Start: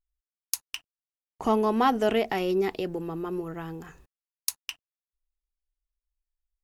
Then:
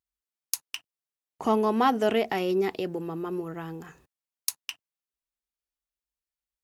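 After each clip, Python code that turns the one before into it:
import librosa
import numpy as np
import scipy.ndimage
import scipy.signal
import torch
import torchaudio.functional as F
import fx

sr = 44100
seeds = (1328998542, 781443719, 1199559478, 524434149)

y = scipy.signal.sosfilt(scipy.signal.butter(2, 98.0, 'highpass', fs=sr, output='sos'), x)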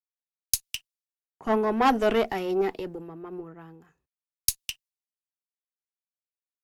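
y = fx.tube_stage(x, sr, drive_db=19.0, bias=0.55)
y = fx.band_widen(y, sr, depth_pct=100)
y = y * librosa.db_to_amplitude(2.0)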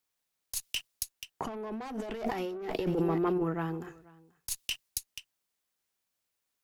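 y = x + 10.0 ** (-23.5 / 20.0) * np.pad(x, (int(484 * sr / 1000.0), 0))[:len(x)]
y = 10.0 ** (-22.5 / 20.0) * np.tanh(y / 10.0 ** (-22.5 / 20.0))
y = fx.over_compress(y, sr, threshold_db=-39.0, ratio=-1.0)
y = y * librosa.db_to_amplitude(5.5)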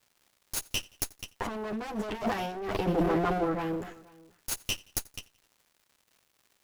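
y = fx.lower_of_two(x, sr, delay_ms=9.8)
y = fx.dmg_crackle(y, sr, seeds[0], per_s=250.0, level_db=-56.0)
y = fx.echo_feedback(y, sr, ms=87, feedback_pct=52, wet_db=-24.0)
y = y * librosa.db_to_amplitude(4.5)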